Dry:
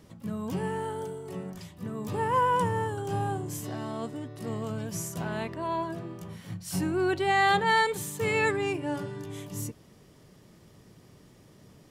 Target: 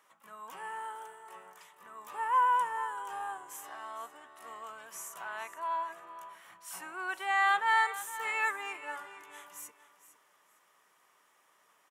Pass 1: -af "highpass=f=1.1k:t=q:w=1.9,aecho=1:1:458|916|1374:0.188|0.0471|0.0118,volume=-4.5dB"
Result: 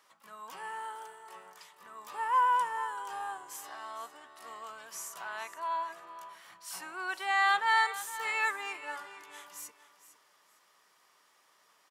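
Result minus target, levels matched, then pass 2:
4000 Hz band +3.5 dB
-af "highpass=f=1.1k:t=q:w=1.9,equalizer=f=4.6k:w=2.1:g=-10.5,aecho=1:1:458|916|1374:0.188|0.0471|0.0118,volume=-4.5dB"

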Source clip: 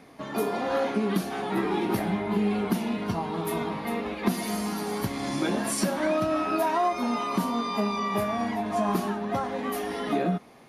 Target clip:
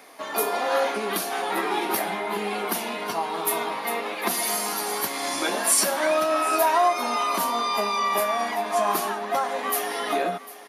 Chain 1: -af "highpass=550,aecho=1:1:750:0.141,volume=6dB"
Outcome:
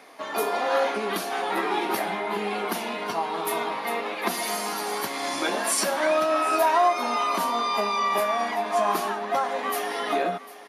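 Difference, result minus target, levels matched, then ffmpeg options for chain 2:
8000 Hz band -4.5 dB
-af "highpass=550,highshelf=f=8.8k:g=11.5,aecho=1:1:750:0.141,volume=6dB"

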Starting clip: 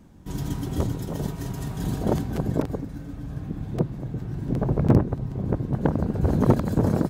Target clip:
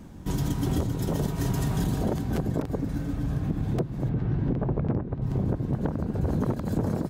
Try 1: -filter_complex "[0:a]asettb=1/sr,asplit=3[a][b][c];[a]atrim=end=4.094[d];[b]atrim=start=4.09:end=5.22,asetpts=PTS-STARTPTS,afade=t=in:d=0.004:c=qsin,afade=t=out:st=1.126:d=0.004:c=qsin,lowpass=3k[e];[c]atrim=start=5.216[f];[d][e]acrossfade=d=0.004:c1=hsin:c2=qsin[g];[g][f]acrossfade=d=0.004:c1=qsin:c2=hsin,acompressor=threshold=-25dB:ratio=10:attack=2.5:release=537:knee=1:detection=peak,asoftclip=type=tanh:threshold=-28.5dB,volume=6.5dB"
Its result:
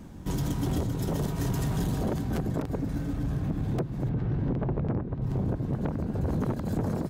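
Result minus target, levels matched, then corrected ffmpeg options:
soft clip: distortion +10 dB
-filter_complex "[0:a]asettb=1/sr,asplit=3[a][b][c];[a]atrim=end=4.094[d];[b]atrim=start=4.09:end=5.22,asetpts=PTS-STARTPTS,afade=t=in:d=0.004:c=qsin,afade=t=out:st=1.126:d=0.004:c=qsin,lowpass=3k[e];[c]atrim=start=5.216[f];[d][e]acrossfade=d=0.004:c1=hsin:c2=qsin[g];[g][f]acrossfade=d=0.004:c1=qsin:c2=hsin,acompressor=threshold=-25dB:ratio=10:attack=2.5:release=537:knee=1:detection=peak,asoftclip=type=tanh:threshold=-21.5dB,volume=6.5dB"

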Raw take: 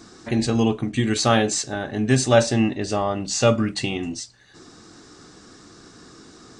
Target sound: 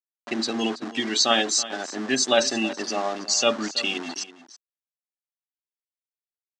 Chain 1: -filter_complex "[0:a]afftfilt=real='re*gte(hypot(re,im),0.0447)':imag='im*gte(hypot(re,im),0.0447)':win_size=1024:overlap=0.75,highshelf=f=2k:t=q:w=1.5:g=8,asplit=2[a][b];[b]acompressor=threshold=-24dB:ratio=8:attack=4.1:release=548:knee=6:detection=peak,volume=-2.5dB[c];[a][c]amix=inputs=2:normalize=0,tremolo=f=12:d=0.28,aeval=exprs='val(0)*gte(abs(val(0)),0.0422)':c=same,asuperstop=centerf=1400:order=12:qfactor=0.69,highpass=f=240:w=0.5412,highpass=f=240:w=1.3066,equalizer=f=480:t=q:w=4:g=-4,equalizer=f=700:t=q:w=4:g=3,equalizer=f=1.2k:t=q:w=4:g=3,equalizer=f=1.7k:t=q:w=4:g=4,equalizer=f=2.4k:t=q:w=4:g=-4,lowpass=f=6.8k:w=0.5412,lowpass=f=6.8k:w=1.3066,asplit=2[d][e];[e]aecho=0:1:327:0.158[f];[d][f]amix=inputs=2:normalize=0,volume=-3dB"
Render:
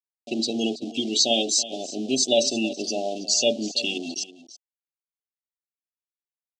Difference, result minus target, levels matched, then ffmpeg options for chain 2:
1000 Hz band -7.5 dB; compressor: peak gain reduction -6.5 dB
-filter_complex "[0:a]afftfilt=real='re*gte(hypot(re,im),0.0447)':imag='im*gte(hypot(re,im),0.0447)':win_size=1024:overlap=0.75,highshelf=f=2k:t=q:w=1.5:g=8,asplit=2[a][b];[b]acompressor=threshold=-31.5dB:ratio=8:attack=4.1:release=548:knee=6:detection=peak,volume=-2.5dB[c];[a][c]amix=inputs=2:normalize=0,tremolo=f=12:d=0.28,aeval=exprs='val(0)*gte(abs(val(0)),0.0422)':c=same,highpass=f=240:w=0.5412,highpass=f=240:w=1.3066,equalizer=f=480:t=q:w=4:g=-4,equalizer=f=700:t=q:w=4:g=3,equalizer=f=1.2k:t=q:w=4:g=3,equalizer=f=1.7k:t=q:w=4:g=4,equalizer=f=2.4k:t=q:w=4:g=-4,lowpass=f=6.8k:w=0.5412,lowpass=f=6.8k:w=1.3066,asplit=2[d][e];[e]aecho=0:1:327:0.158[f];[d][f]amix=inputs=2:normalize=0,volume=-3dB"

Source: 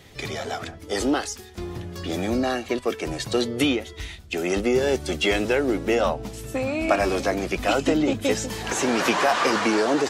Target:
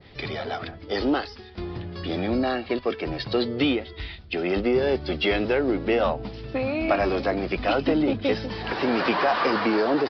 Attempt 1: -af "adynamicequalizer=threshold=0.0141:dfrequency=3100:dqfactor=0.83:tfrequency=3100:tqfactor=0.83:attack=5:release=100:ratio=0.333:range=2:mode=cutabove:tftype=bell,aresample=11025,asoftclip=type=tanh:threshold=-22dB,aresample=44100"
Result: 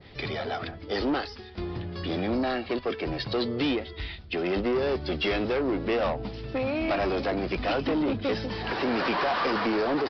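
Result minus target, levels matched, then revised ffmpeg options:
soft clip: distortion +15 dB
-af "adynamicequalizer=threshold=0.0141:dfrequency=3100:dqfactor=0.83:tfrequency=3100:tqfactor=0.83:attack=5:release=100:ratio=0.333:range=2:mode=cutabove:tftype=bell,aresample=11025,asoftclip=type=tanh:threshold=-10.5dB,aresample=44100"

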